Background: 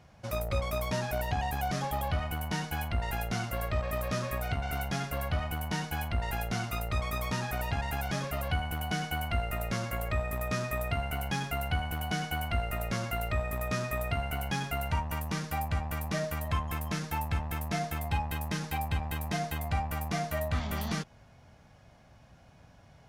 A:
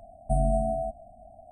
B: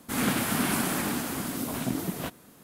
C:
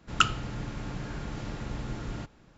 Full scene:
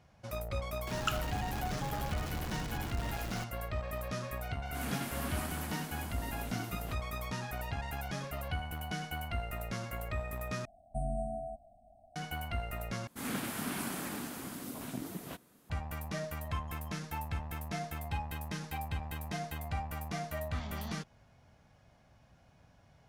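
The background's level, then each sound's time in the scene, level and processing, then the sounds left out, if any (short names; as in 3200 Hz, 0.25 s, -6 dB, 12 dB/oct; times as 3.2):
background -6 dB
0.87 add C -12.5 dB + zero-crossing step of -24.5 dBFS
4.65 add B -13 dB
10.65 replace with A -11 dB
13.07 replace with B -10.5 dB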